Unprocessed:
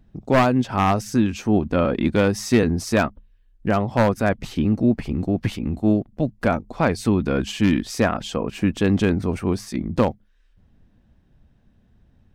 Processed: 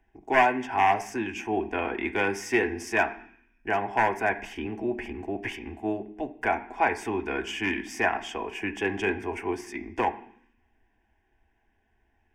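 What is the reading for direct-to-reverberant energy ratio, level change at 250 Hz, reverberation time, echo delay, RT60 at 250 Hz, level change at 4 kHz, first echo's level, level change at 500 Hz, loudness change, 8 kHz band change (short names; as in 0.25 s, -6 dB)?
5.0 dB, -12.5 dB, 0.65 s, none, 0.90 s, -6.0 dB, none, -7.0 dB, -6.5 dB, -8.0 dB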